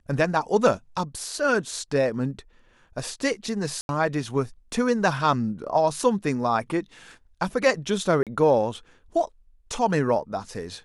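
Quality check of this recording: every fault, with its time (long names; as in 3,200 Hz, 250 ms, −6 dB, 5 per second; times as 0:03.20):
0:03.81–0:03.89: drop-out 81 ms
0:08.23–0:08.27: drop-out 37 ms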